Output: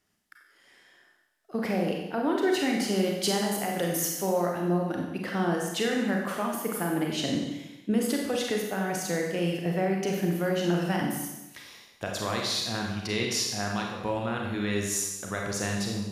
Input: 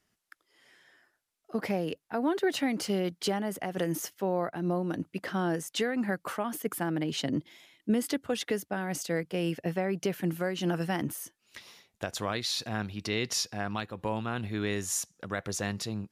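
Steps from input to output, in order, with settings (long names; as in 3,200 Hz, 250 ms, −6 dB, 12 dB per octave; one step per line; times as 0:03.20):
0:02.94–0:04.62: high-shelf EQ 4,200 Hz +8 dB
four-comb reverb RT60 1 s, combs from 31 ms, DRR −0.5 dB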